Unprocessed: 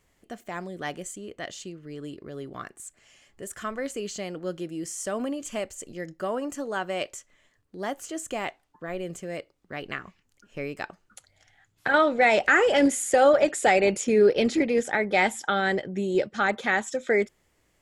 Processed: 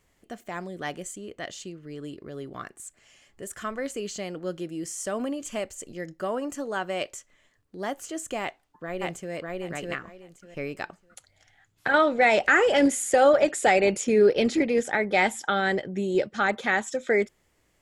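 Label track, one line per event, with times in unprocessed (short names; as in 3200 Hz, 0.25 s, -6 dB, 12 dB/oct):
8.410000	9.340000	echo throw 0.6 s, feedback 20%, level -1 dB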